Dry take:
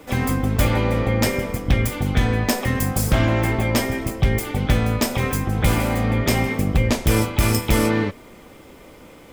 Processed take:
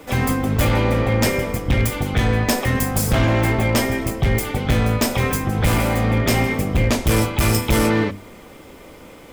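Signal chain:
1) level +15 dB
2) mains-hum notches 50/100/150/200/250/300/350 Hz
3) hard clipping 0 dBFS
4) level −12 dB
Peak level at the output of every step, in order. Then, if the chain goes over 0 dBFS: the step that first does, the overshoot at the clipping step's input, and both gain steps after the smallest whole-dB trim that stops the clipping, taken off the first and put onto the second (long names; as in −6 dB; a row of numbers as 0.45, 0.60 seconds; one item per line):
+8.0, +8.5, 0.0, −12.0 dBFS
step 1, 8.5 dB
step 1 +6 dB, step 4 −3 dB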